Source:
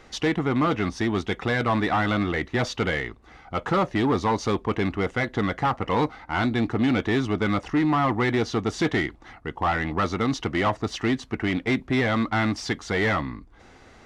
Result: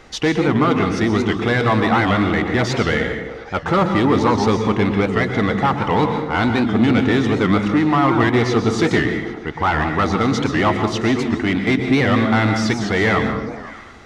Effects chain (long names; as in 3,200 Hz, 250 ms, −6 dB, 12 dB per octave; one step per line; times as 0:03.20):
echo through a band-pass that steps 101 ms, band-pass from 150 Hz, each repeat 0.7 octaves, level −4 dB
dense smooth reverb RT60 0.68 s, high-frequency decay 0.85×, pre-delay 110 ms, DRR 6 dB
wow of a warped record 78 rpm, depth 160 cents
level +5.5 dB